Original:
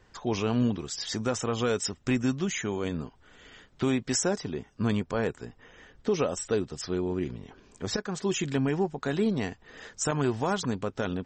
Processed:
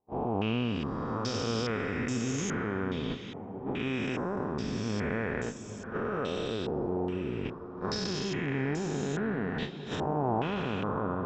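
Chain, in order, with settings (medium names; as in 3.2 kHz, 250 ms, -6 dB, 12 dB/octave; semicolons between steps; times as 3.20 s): spectral blur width 436 ms; gate -39 dBFS, range -53 dB; in parallel at +2.5 dB: compressor with a negative ratio -46 dBFS, ratio -1; 7.05–7.45 s: on the sum: distance through air 430 m; on a send: echo that smears into a reverb 774 ms, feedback 41%, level -10 dB; on the sum: step-sequenced low-pass 2.4 Hz 810–6800 Hz; trim -1.5 dB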